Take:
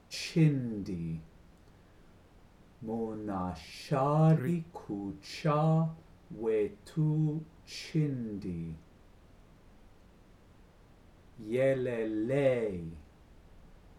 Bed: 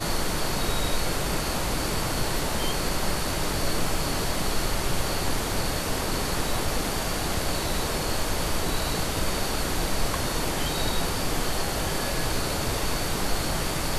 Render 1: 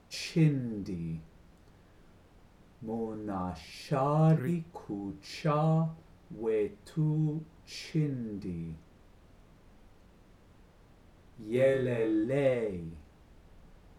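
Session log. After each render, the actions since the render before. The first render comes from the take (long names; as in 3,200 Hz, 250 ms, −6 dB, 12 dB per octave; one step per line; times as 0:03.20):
0:11.52–0:12.24: flutter between parallel walls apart 4.2 metres, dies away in 0.37 s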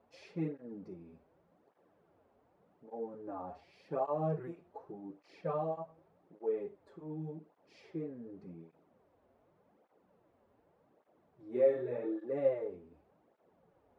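resonant band-pass 590 Hz, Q 1.2
through-zero flanger with one copy inverted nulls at 0.86 Hz, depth 6.8 ms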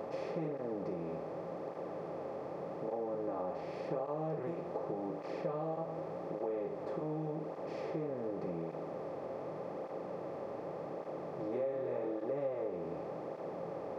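compressor on every frequency bin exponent 0.4
downward compressor 4 to 1, threshold −35 dBFS, peak gain reduction 12 dB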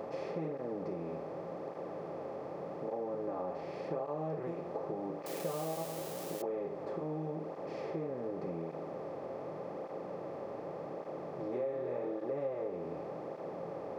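0:05.26–0:06.42: spike at every zero crossing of −33 dBFS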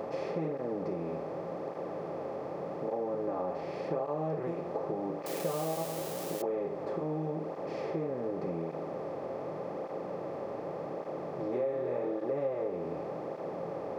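level +4 dB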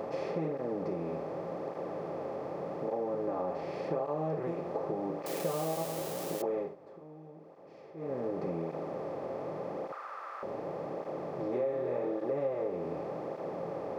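0:06.59–0:08.12: duck −16 dB, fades 0.17 s
0:09.92–0:10.43: high-pass with resonance 1,300 Hz, resonance Q 5.3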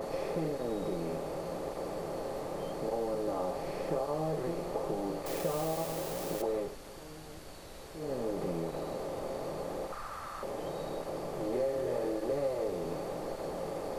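mix in bed −23 dB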